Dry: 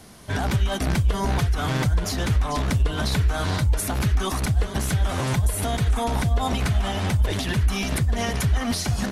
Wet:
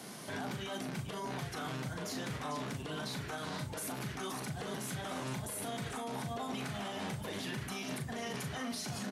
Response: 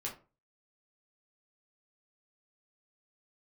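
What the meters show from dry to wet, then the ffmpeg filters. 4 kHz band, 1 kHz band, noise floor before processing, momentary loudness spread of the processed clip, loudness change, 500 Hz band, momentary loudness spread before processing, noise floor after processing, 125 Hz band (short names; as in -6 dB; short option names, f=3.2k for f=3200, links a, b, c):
-12.0 dB, -12.5 dB, -29 dBFS, 1 LU, -16.0 dB, -11.5 dB, 1 LU, -44 dBFS, -20.5 dB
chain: -filter_complex "[0:a]highpass=f=150:w=0.5412,highpass=f=150:w=1.3066,acompressor=threshold=-31dB:ratio=6,alimiter=level_in=8dB:limit=-24dB:level=0:latency=1:release=51,volume=-8dB,asplit=2[a][b];[b]adelay=39,volume=-7dB[c];[a][c]amix=inputs=2:normalize=0,asplit=2[d][e];[1:a]atrim=start_sample=2205[f];[e][f]afir=irnorm=-1:irlink=0,volume=-8.5dB[g];[d][g]amix=inputs=2:normalize=0,volume=-2dB"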